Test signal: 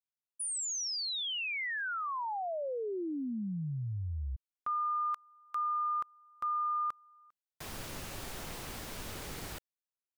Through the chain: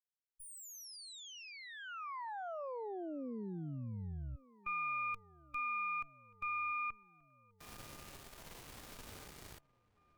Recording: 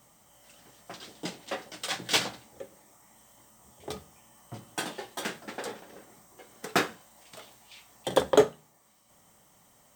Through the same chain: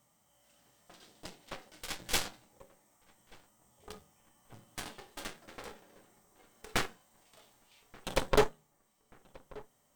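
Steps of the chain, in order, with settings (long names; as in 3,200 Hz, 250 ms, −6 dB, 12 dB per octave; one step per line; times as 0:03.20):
harmonic generator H 3 −25 dB, 5 −28 dB, 7 −21 dB, 8 −11 dB, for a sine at −6.5 dBFS
harmonic and percussive parts rebalanced percussive −9 dB
feedback echo with a low-pass in the loop 1,182 ms, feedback 63%, low-pass 1,700 Hz, level −22 dB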